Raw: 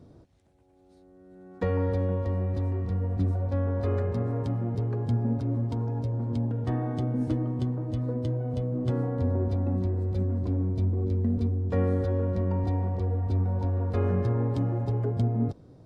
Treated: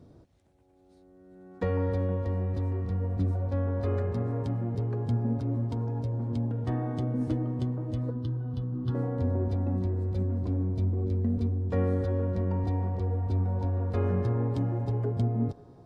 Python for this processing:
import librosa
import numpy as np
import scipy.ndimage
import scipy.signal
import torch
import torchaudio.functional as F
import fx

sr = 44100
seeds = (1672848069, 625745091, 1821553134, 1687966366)

y = fx.fixed_phaser(x, sr, hz=2200.0, stages=6, at=(8.1, 8.95))
y = fx.echo_wet_bandpass(y, sr, ms=272, feedback_pct=69, hz=850.0, wet_db=-18.5)
y = F.gain(torch.from_numpy(y), -1.5).numpy()